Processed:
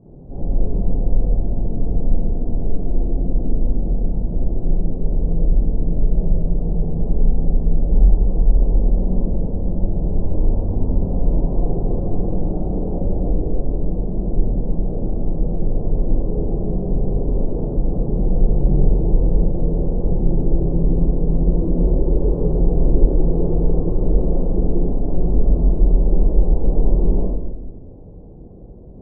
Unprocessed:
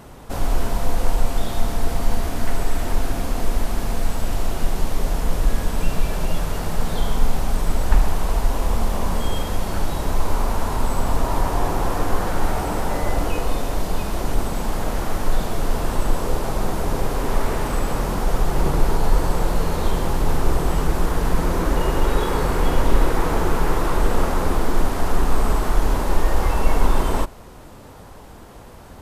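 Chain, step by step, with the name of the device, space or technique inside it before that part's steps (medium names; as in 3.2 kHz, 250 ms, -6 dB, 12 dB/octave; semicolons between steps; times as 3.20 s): next room (low-pass 500 Hz 24 dB/octave; reverberation RT60 1.1 s, pre-delay 11 ms, DRR -7.5 dB); trim -6 dB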